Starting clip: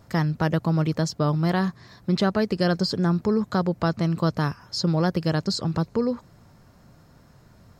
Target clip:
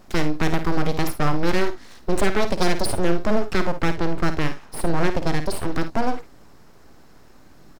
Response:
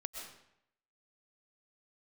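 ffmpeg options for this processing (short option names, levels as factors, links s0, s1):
-filter_complex "[0:a]asettb=1/sr,asplit=3[s0][s1][s2];[s0]atrim=end=3.814[s3];[s1]atrim=start=3.81:end=5.63,asetpts=PTS-STARTPTS,afade=t=in:d=0.004:c=qsin,afade=t=out:st=1.816:d=0.004:c=qsin,highshelf=f=3700:g=-8[s4];[s2]atrim=start=5.626[s5];[s3][s4]acrossfade=d=0.004:c1=hsin:c2=qsin[s6];[s6][s5]acrossfade=d=0.004:c1=qsin:c2=hsin,aeval=exprs='abs(val(0))':c=same,aecho=1:1:53|72:0.299|0.141,volume=1.68"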